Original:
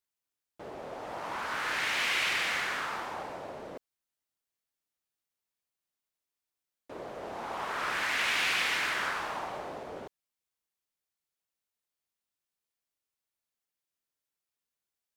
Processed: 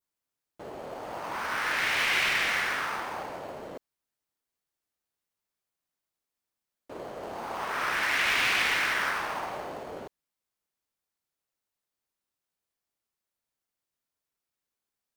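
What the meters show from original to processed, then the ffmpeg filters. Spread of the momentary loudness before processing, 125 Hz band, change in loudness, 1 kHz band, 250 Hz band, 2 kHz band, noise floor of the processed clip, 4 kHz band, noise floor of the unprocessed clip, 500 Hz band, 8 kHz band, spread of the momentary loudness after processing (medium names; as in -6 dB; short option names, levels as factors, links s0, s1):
18 LU, +3.5 dB, +4.0 dB, +3.0 dB, +2.5 dB, +4.0 dB, under -85 dBFS, +2.0 dB, under -85 dBFS, +2.5 dB, +2.0 dB, 19 LU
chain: -filter_complex "[0:a]adynamicequalizer=threshold=0.01:dfrequency=2100:dqfactor=1:tfrequency=2100:tqfactor=1:attack=5:release=100:ratio=0.375:range=2:mode=boostabove:tftype=bell,asplit=2[s0][s1];[s1]acrusher=samples=12:mix=1:aa=0.000001,volume=0.282[s2];[s0][s2]amix=inputs=2:normalize=0"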